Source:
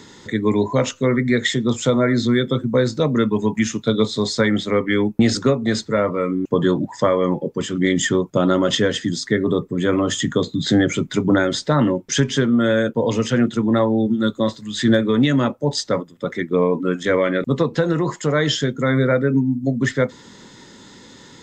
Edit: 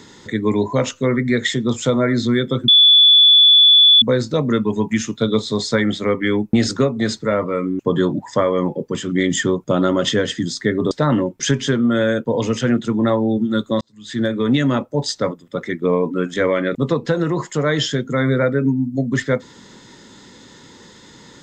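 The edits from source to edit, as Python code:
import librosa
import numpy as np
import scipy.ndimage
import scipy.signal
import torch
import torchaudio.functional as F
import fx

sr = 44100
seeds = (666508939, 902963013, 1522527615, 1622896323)

y = fx.edit(x, sr, fx.insert_tone(at_s=2.68, length_s=1.34, hz=3450.0, db=-6.5),
    fx.cut(start_s=9.57, length_s=2.03),
    fx.fade_in_span(start_s=14.5, length_s=0.72), tone=tone)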